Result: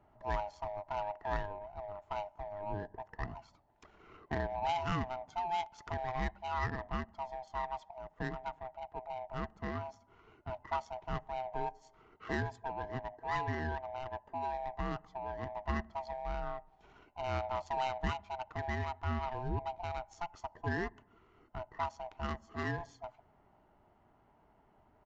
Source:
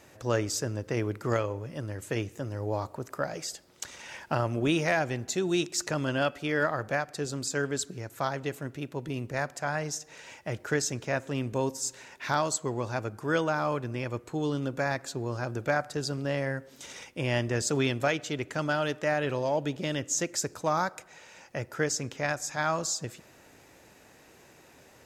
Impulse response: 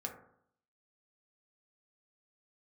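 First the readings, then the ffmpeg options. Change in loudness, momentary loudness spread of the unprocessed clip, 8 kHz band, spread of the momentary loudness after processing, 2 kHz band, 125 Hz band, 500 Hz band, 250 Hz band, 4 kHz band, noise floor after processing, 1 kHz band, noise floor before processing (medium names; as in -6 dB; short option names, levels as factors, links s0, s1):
-8.5 dB, 10 LU, under -25 dB, 9 LU, -10.5 dB, -9.0 dB, -10.5 dB, -12.0 dB, -14.0 dB, -68 dBFS, -3.0 dB, -56 dBFS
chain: -af "afftfilt=real='real(if(lt(b,1008),b+24*(1-2*mod(floor(b/24),2)),b),0)':imag='imag(if(lt(b,1008),b+24*(1-2*mod(floor(b/24),2)),b),0)':win_size=2048:overlap=0.75,adynamicsmooth=sensitivity=1.5:basefreq=1100,aresample=16000,aresample=44100,volume=0.447"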